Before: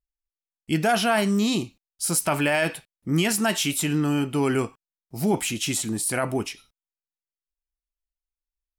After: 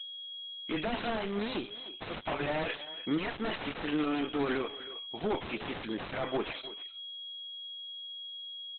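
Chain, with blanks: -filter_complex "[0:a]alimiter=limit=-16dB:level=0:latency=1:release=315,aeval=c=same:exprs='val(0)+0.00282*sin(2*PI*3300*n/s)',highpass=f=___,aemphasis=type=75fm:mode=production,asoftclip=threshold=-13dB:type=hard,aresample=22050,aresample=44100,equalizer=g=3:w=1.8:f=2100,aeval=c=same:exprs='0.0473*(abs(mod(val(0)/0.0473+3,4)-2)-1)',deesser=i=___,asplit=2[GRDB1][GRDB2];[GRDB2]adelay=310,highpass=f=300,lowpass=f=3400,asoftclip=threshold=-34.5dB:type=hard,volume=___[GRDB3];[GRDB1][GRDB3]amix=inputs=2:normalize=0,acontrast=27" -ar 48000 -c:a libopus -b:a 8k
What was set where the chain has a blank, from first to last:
430, 0.95, -12dB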